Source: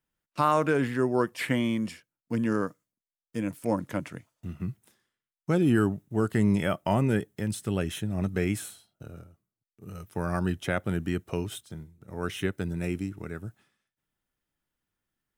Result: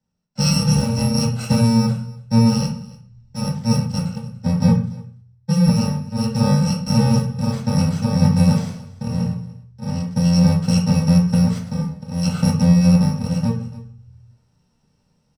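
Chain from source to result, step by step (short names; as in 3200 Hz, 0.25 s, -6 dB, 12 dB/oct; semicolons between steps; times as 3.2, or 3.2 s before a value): FFT order left unsorted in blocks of 128 samples; echo 0.29 s -22 dB; reverb RT60 0.45 s, pre-delay 3 ms, DRR -2.5 dB; AGC gain up to 13.5 dB; air absorption 69 m; gain -2.5 dB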